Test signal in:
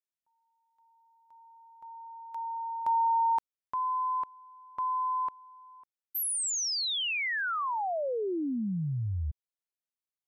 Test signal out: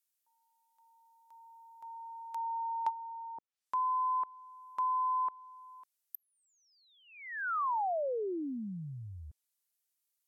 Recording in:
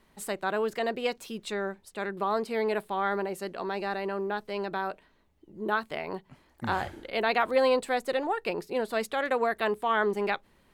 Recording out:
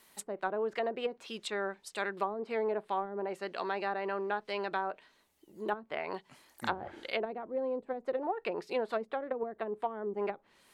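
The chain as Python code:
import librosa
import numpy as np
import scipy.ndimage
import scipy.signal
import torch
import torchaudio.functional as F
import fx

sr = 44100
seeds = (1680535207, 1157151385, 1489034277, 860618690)

y = fx.riaa(x, sr, side='recording')
y = fx.env_lowpass_down(y, sr, base_hz=340.0, full_db=-24.0)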